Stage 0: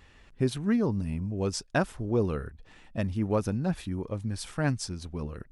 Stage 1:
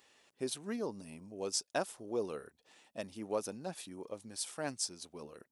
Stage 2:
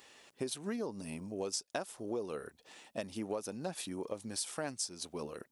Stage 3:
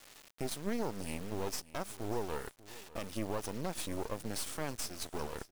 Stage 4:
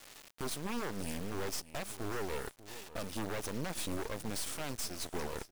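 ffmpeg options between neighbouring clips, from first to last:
-af "highpass=640,equalizer=f=1600:t=o:w=2.6:g=-14.5,volume=1.68"
-af "acompressor=threshold=0.00794:ratio=6,volume=2.37"
-af "alimiter=level_in=2:limit=0.0631:level=0:latency=1:release=16,volume=0.501,acrusher=bits=6:dc=4:mix=0:aa=0.000001,aecho=1:1:591:0.119,volume=2"
-af "aeval=exprs='0.0316*(abs(mod(val(0)/0.0316+3,4)-2)-1)':c=same,volume=1.33"

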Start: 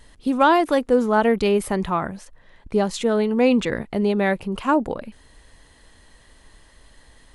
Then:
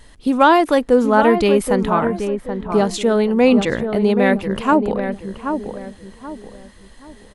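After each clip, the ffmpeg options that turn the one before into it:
-filter_complex "[0:a]asplit=2[s0][s1];[s1]adelay=779,lowpass=f=1300:p=1,volume=0.473,asplit=2[s2][s3];[s3]adelay=779,lowpass=f=1300:p=1,volume=0.35,asplit=2[s4][s5];[s5]adelay=779,lowpass=f=1300:p=1,volume=0.35,asplit=2[s6][s7];[s7]adelay=779,lowpass=f=1300:p=1,volume=0.35[s8];[s0][s2][s4][s6][s8]amix=inputs=5:normalize=0,volume=1.58"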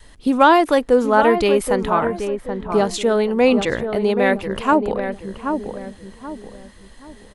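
-af "adynamicequalizer=threshold=0.0282:dfrequency=200:dqfactor=1.4:tfrequency=200:tqfactor=1.4:attack=5:release=100:ratio=0.375:range=3:mode=cutabove:tftype=bell"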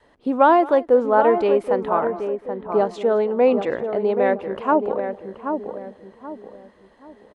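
-af "bandpass=f=590:t=q:w=0.84:csg=0,aecho=1:1:217:0.0944"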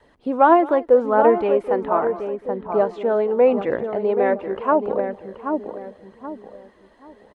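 -filter_complex "[0:a]aphaser=in_gain=1:out_gain=1:delay=3.5:decay=0.32:speed=0.8:type=triangular,acrossover=split=2900[s0][s1];[s1]acompressor=threshold=0.00112:ratio=4:attack=1:release=60[s2];[s0][s2]amix=inputs=2:normalize=0"

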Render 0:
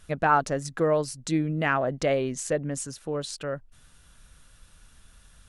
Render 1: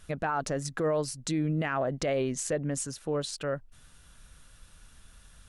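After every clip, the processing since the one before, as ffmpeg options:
-af "alimiter=limit=0.0944:level=0:latency=1:release=46"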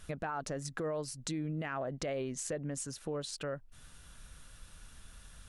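-af "acompressor=threshold=0.00794:ratio=2,volume=1.12"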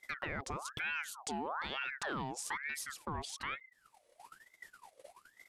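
-af "aeval=exprs='0.0596*(cos(1*acos(clip(val(0)/0.0596,-1,1)))-cos(1*PI/2))+0.00299*(cos(3*acos(clip(val(0)/0.0596,-1,1)))-cos(3*PI/2))':c=same,agate=range=0.178:threshold=0.00282:ratio=16:detection=peak,aeval=exprs='val(0)*sin(2*PI*1300*n/s+1300*0.6/1.1*sin(2*PI*1.1*n/s))':c=same,volume=1.19"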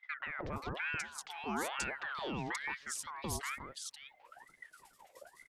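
-filter_complex "[0:a]acrossover=split=970|3200[s0][s1][s2];[s0]adelay=170[s3];[s2]adelay=530[s4];[s3][s1][s4]amix=inputs=3:normalize=0,volume=1.26"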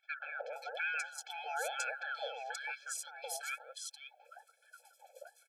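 -af "afftfilt=real='re*eq(mod(floor(b*sr/1024/440),2),1)':imag='im*eq(mod(floor(b*sr/1024/440),2),1)':win_size=1024:overlap=0.75,volume=1.41"

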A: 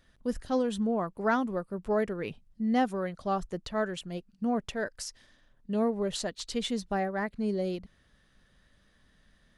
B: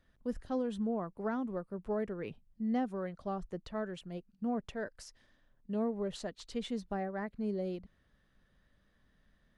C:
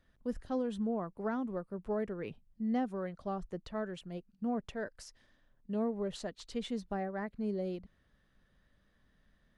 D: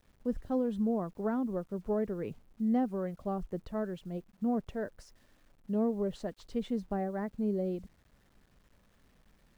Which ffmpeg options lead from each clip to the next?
-filter_complex "[0:a]highshelf=f=3000:g=-9.5,acrossover=split=420[s0][s1];[s1]acompressor=threshold=0.0282:ratio=6[s2];[s0][s2]amix=inputs=2:normalize=0,volume=0.562"
-af anull
-af "tiltshelf=f=1300:g=6,acrusher=bits=10:mix=0:aa=0.000001,volume=0.841"

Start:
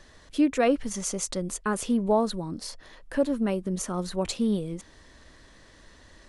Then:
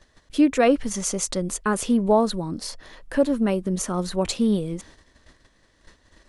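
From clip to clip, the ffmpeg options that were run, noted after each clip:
-af "agate=range=0.224:threshold=0.00316:ratio=16:detection=peak,volume=1.68"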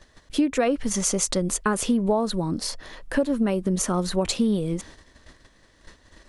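-af "acompressor=threshold=0.0794:ratio=6,volume=1.5"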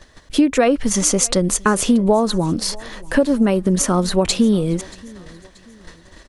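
-af "aecho=1:1:631|1262|1893:0.0708|0.029|0.0119,volume=2.24"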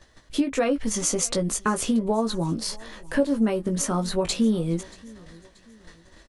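-filter_complex "[0:a]asplit=2[s0][s1];[s1]adelay=18,volume=0.501[s2];[s0][s2]amix=inputs=2:normalize=0,volume=0.376"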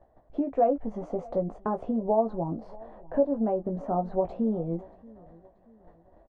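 -af "lowpass=f=720:t=q:w=4.9,volume=0.447"

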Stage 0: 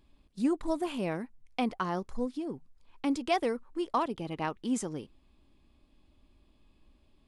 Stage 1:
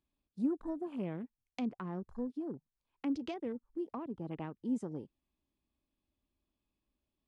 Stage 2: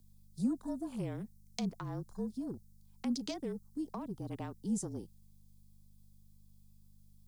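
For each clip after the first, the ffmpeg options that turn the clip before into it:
-filter_complex "[0:a]highpass=f=60:p=1,afwtdn=0.00708,acrossover=split=350[s0][s1];[s1]acompressor=threshold=0.00891:ratio=16[s2];[s0][s2]amix=inputs=2:normalize=0,volume=0.75"
-af "aeval=exprs='val(0)+0.00126*(sin(2*PI*50*n/s)+sin(2*PI*2*50*n/s)/2+sin(2*PI*3*50*n/s)/3+sin(2*PI*4*50*n/s)/4+sin(2*PI*5*50*n/s)/5)':c=same,aexciter=amount=7.5:drive=5.1:freq=4000,afreqshift=-36"

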